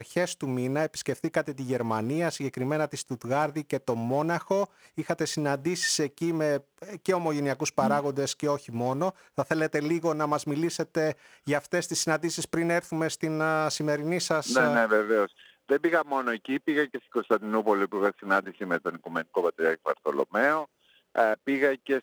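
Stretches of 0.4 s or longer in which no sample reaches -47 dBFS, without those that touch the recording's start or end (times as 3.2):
20.65–21.15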